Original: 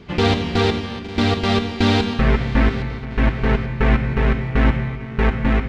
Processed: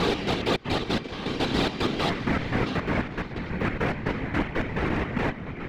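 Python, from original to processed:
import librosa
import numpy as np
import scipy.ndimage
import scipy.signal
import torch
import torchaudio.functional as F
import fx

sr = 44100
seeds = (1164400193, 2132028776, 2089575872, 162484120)

p1 = fx.block_reorder(x, sr, ms=140.0, group=5)
p2 = fx.highpass(p1, sr, hz=170.0, slope=6)
p3 = np.clip(p2, -10.0 ** (-19.5 / 20.0), 10.0 ** (-19.5 / 20.0))
p4 = p2 + (p3 * 10.0 ** (-3.0 / 20.0))
p5 = fx.whisperise(p4, sr, seeds[0])
y = p5 * 10.0 ** (-8.5 / 20.0)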